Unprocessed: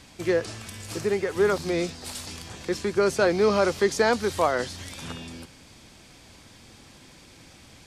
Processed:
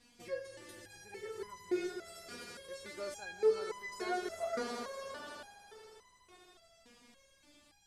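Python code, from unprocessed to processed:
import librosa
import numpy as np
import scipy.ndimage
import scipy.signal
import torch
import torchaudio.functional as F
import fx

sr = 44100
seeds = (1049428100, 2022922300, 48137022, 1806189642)

y = fx.echo_swell(x, sr, ms=81, loudest=5, wet_db=-13.0)
y = fx.resonator_held(y, sr, hz=3.5, low_hz=240.0, high_hz=1000.0)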